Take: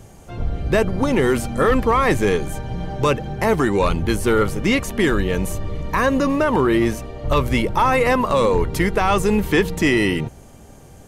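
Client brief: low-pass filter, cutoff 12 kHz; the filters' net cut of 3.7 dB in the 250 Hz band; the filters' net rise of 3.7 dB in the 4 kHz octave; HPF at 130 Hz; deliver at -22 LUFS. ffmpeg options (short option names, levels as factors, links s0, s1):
-af "highpass=130,lowpass=12000,equalizer=f=250:t=o:g=-4.5,equalizer=f=4000:t=o:g=5,volume=0.794"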